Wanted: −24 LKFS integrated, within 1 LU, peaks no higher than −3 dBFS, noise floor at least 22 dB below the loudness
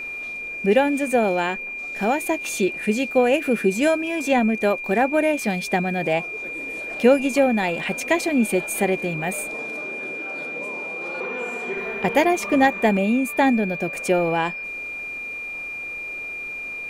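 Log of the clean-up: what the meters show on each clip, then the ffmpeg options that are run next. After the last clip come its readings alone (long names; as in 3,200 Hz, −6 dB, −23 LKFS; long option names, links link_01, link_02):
interfering tone 2,400 Hz; level of the tone −29 dBFS; integrated loudness −22.5 LKFS; sample peak −6.0 dBFS; target loudness −24.0 LKFS
→ -af "bandreject=frequency=2400:width=30"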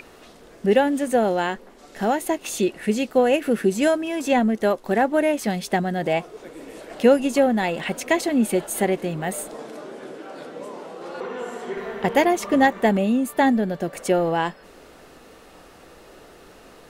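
interfering tone none found; integrated loudness −22.0 LKFS; sample peak −6.0 dBFS; target loudness −24.0 LKFS
→ -af "volume=-2dB"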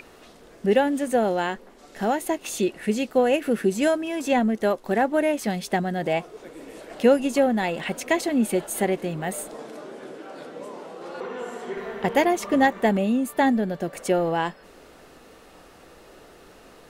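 integrated loudness −24.0 LKFS; sample peak −8.0 dBFS; background noise floor −50 dBFS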